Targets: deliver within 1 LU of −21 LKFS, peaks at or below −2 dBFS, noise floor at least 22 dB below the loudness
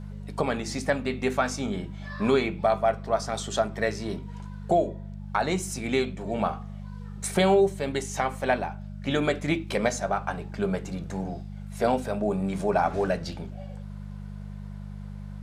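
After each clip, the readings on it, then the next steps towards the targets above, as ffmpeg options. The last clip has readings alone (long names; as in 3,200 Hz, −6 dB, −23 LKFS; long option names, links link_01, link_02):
mains hum 50 Hz; hum harmonics up to 200 Hz; level of the hum −36 dBFS; integrated loudness −27.5 LKFS; sample peak −10.0 dBFS; target loudness −21.0 LKFS
→ -af "bandreject=frequency=50:width_type=h:width=4,bandreject=frequency=100:width_type=h:width=4,bandreject=frequency=150:width_type=h:width=4,bandreject=frequency=200:width_type=h:width=4"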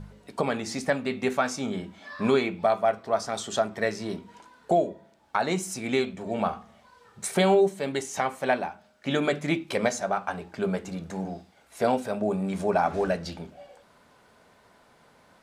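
mains hum none found; integrated loudness −27.5 LKFS; sample peak −11.0 dBFS; target loudness −21.0 LKFS
→ -af "volume=6.5dB"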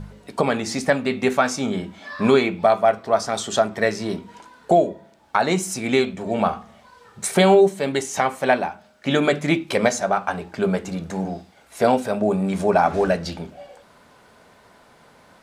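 integrated loudness −21.0 LKFS; sample peak −4.5 dBFS; background noise floor −53 dBFS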